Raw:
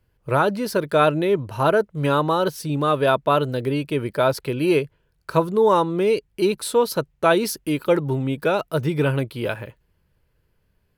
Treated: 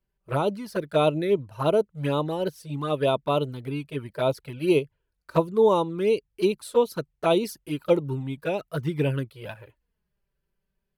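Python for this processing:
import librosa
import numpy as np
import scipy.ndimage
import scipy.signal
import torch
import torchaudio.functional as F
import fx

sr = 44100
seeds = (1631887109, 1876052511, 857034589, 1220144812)

y = fx.env_flanger(x, sr, rest_ms=5.2, full_db=-15.0)
y = fx.upward_expand(y, sr, threshold_db=-34.0, expansion=1.5)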